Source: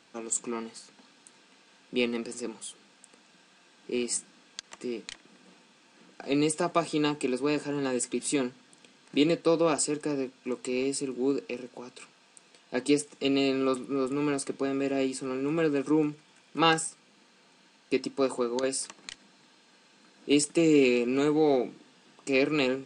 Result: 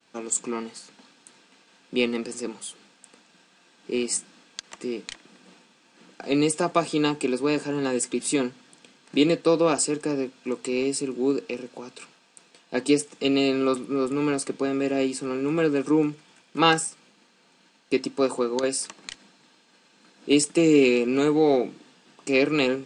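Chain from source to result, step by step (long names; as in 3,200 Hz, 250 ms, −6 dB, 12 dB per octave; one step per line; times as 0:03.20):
downward expander −56 dBFS
level +4 dB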